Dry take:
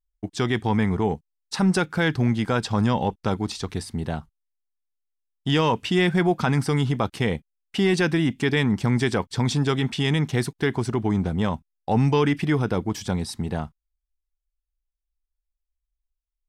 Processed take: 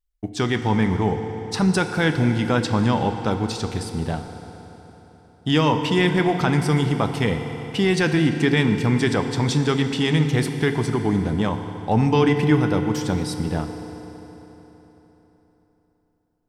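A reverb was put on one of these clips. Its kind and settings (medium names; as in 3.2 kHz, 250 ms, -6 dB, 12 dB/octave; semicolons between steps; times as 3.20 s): FDN reverb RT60 3.9 s, high-frequency decay 0.8×, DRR 6.5 dB; trim +1.5 dB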